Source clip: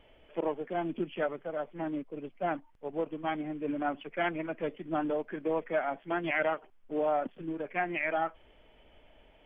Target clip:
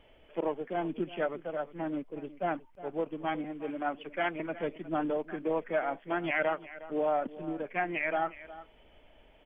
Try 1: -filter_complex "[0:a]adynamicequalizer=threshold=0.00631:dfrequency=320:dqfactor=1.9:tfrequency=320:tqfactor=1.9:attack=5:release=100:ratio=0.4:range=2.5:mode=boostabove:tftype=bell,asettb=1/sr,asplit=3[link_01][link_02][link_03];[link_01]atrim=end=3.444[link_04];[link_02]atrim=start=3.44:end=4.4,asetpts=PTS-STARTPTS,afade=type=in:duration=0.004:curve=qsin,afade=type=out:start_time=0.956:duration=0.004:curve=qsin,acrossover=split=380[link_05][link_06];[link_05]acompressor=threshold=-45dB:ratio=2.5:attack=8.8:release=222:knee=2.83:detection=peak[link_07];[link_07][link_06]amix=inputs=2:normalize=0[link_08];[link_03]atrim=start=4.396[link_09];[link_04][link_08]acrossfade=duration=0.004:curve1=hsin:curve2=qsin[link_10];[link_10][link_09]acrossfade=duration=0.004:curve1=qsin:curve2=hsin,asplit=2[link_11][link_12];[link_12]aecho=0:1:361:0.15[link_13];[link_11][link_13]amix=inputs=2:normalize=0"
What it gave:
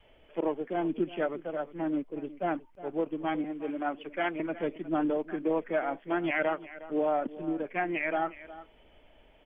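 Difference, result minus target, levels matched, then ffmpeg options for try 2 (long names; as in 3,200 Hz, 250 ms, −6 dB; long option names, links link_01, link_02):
250 Hz band +2.5 dB
-filter_complex "[0:a]asettb=1/sr,asplit=3[link_01][link_02][link_03];[link_01]atrim=end=3.444[link_04];[link_02]atrim=start=3.44:end=4.4,asetpts=PTS-STARTPTS,afade=type=in:duration=0.004:curve=qsin,afade=type=out:start_time=0.956:duration=0.004:curve=qsin,acrossover=split=380[link_05][link_06];[link_05]acompressor=threshold=-45dB:ratio=2.5:attack=8.8:release=222:knee=2.83:detection=peak[link_07];[link_07][link_06]amix=inputs=2:normalize=0[link_08];[link_03]atrim=start=4.396[link_09];[link_04][link_08]acrossfade=duration=0.004:curve1=hsin:curve2=qsin[link_10];[link_10][link_09]acrossfade=duration=0.004:curve1=qsin:curve2=hsin,asplit=2[link_11][link_12];[link_12]aecho=0:1:361:0.15[link_13];[link_11][link_13]amix=inputs=2:normalize=0"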